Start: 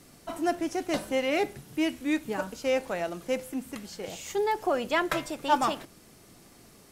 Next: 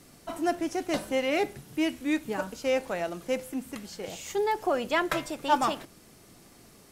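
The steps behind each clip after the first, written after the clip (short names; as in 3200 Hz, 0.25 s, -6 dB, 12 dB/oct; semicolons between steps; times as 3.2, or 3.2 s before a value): nothing audible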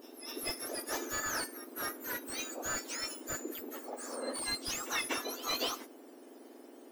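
spectrum mirrored in octaves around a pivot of 1900 Hz; reverse echo 0.244 s -15.5 dB; slew limiter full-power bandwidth 120 Hz; gain -1.5 dB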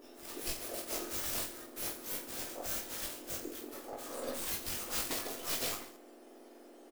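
tracing distortion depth 0.36 ms; on a send: reverse bouncing-ball echo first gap 20 ms, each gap 1.4×, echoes 5; on the sum: gain -3 dB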